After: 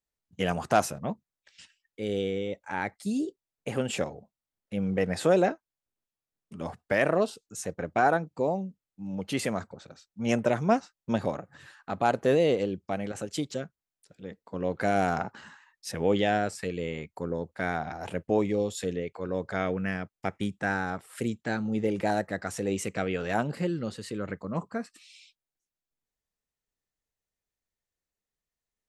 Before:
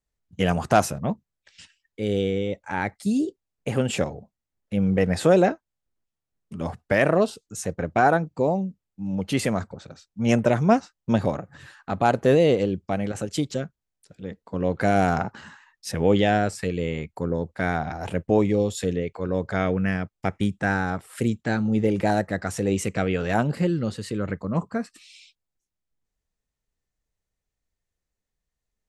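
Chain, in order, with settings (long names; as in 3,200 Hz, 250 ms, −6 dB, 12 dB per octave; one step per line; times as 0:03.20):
low-shelf EQ 140 Hz −9.5 dB
level −4 dB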